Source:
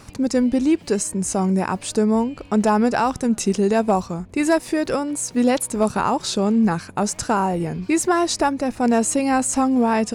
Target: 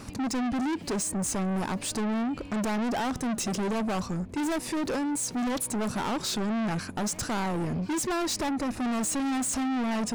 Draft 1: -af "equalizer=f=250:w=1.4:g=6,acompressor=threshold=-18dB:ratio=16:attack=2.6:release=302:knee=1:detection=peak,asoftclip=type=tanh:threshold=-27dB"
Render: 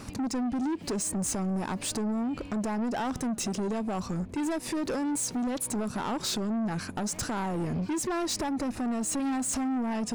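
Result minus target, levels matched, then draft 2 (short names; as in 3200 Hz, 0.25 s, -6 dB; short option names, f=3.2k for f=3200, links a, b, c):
compressor: peak gain reduction +12.5 dB
-af "equalizer=f=250:w=1.4:g=6,asoftclip=type=tanh:threshold=-27dB"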